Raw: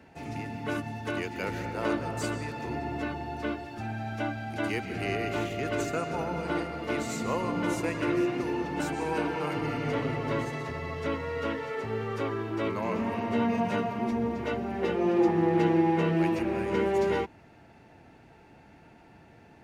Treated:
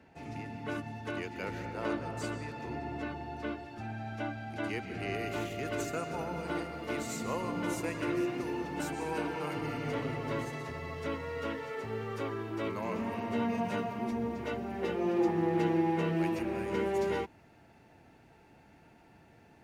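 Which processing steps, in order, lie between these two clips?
high shelf 8300 Hz -5.5 dB, from 5.14 s +8 dB; gain -5 dB

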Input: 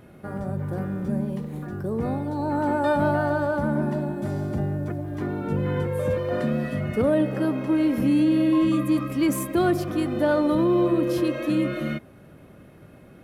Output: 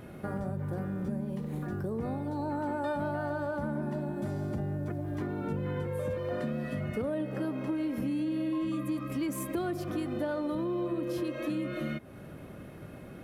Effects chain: compressor 4:1, threshold -35 dBFS, peak gain reduction 15 dB; gain +2.5 dB

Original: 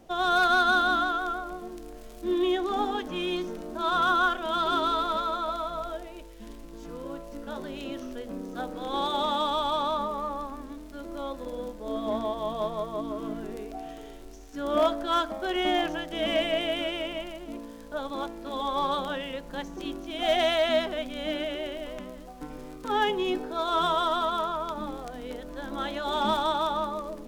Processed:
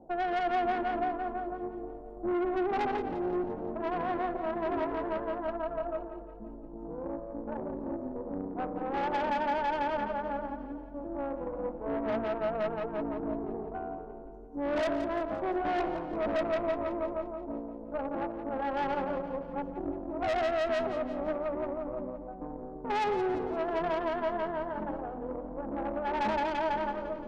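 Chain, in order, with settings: elliptic low-pass 900 Hz, stop band 40 dB; low shelf 170 Hz -5.5 dB; de-hum 60.62 Hz, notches 10; tube stage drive 33 dB, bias 0.7; on a send: split-band echo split 530 Hz, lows 0.333 s, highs 0.173 s, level -11 dB; on the sum: gain +6 dB

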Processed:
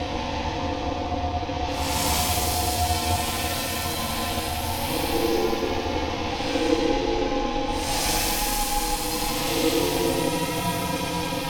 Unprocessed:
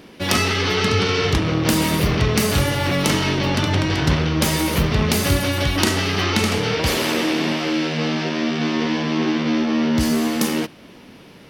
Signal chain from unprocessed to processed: fixed phaser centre 480 Hz, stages 4; Paulstretch 8.7×, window 0.10 s, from 1.45; ring modulator 400 Hz

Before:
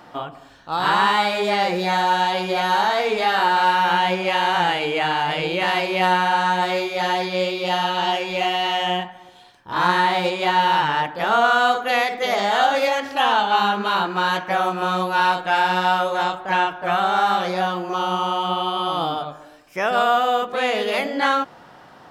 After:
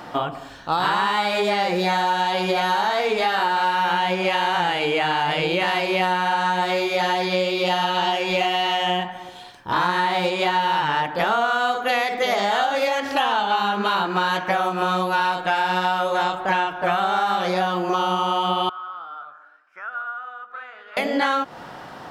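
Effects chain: compressor 6:1, threshold -26 dBFS, peak gain reduction 13 dB; 18.69–20.97 band-pass 1400 Hz, Q 9.8; gain +7.5 dB

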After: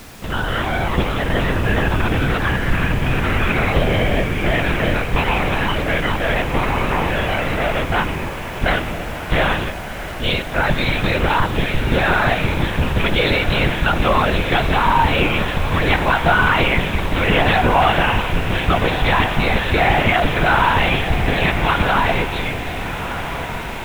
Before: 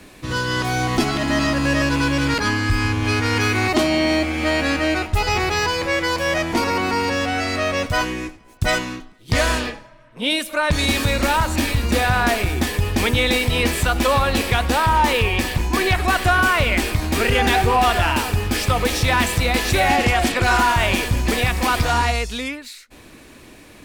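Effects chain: LPC vocoder at 8 kHz whisper; added noise pink -41 dBFS; diffused feedback echo 1.4 s, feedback 57%, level -9.5 dB; gain +1.5 dB

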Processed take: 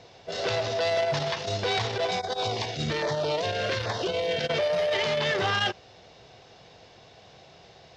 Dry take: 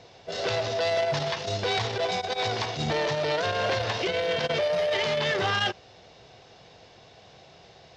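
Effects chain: 2.19–4.48 LFO notch saw down 1.2 Hz 620–3100 Hz

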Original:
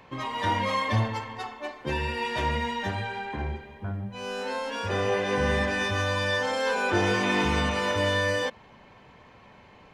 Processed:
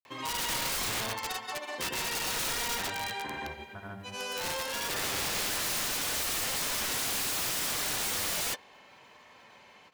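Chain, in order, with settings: grains 0.126 s, grains 20/s, pitch spread up and down by 0 st; RIAA curve recording; wrapped overs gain 27 dB

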